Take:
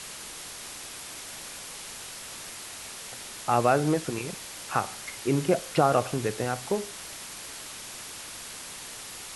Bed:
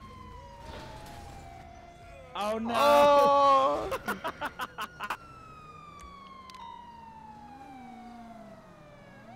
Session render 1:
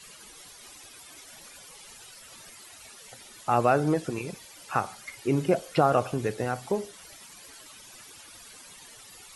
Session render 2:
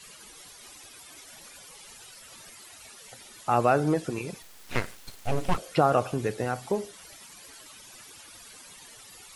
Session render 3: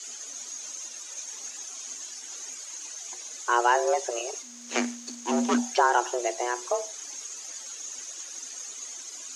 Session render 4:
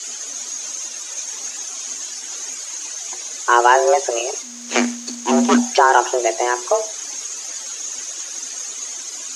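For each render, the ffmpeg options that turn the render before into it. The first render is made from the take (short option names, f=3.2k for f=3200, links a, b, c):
-af "afftdn=nr=14:nf=-41"
-filter_complex "[0:a]asettb=1/sr,asplit=3[a][b][c];[a]atrim=end=4.424[d];[b]atrim=start=4.42:end=5.58,asetpts=PTS-STARTPTS,afade=t=in:d=0.004:c=qsin,afade=t=out:st=1.156:d=0.004:c=qsin,aeval=exprs='abs(val(0))':c=same[e];[c]atrim=start=5.576[f];[d][e]acrossfade=d=0.004:c1=hsin:c2=qsin[g];[g][f]acrossfade=d=0.004:c1=qsin:c2=hsin"
-af "lowpass=f=6.3k:t=q:w=11,afreqshift=240"
-af "volume=10dB,alimiter=limit=-1dB:level=0:latency=1"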